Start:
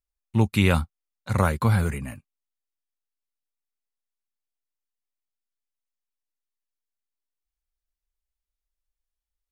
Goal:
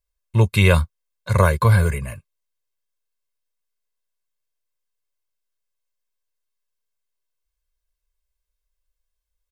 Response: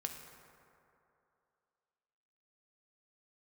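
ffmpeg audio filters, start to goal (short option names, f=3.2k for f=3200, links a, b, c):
-af "aecho=1:1:1.9:0.83,volume=3dB"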